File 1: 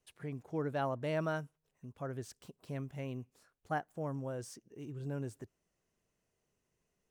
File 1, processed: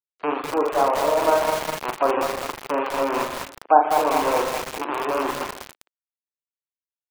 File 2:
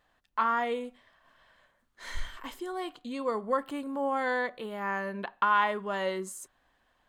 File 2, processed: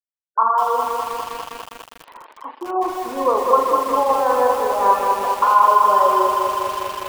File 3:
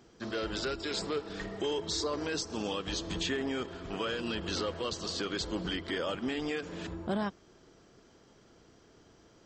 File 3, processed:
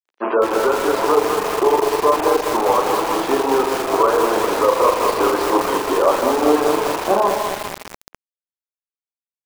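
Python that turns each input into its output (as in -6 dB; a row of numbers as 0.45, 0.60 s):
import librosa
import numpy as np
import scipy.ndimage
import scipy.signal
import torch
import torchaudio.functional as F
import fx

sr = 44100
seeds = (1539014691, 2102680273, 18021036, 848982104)

y = fx.rattle_buzz(x, sr, strikes_db=-48.0, level_db=-23.0)
y = fx.high_shelf_res(y, sr, hz=1500.0, db=-13.5, q=3.0)
y = fx.rider(y, sr, range_db=4, speed_s=0.5)
y = fx.lowpass(y, sr, hz=3200.0, slope=6)
y = fx.echo_feedback(y, sr, ms=153, feedback_pct=58, wet_db=-12.5)
y = fx.rev_spring(y, sr, rt60_s=1.1, pass_ms=(40,), chirp_ms=40, drr_db=1.5)
y = fx.dereverb_blind(y, sr, rt60_s=0.5)
y = np.sign(y) * np.maximum(np.abs(y) - 10.0 ** (-47.5 / 20.0), 0.0)
y = scipy.signal.sosfilt(scipy.signal.butter(4, 330.0, 'highpass', fs=sr, output='sos'), y)
y = fx.spec_gate(y, sr, threshold_db=-30, keep='strong')
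y = fx.echo_crushed(y, sr, ms=202, feedback_pct=80, bits=7, wet_db=-4.0)
y = librosa.util.normalize(y) * 10.0 ** (-2 / 20.0)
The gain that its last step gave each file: +17.0, +8.0, +18.0 dB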